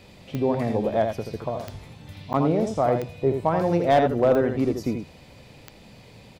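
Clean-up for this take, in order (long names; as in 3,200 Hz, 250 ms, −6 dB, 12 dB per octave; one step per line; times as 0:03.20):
clipped peaks rebuilt −11 dBFS
click removal
repair the gap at 0:02.33, 9.4 ms
echo removal 81 ms −6.5 dB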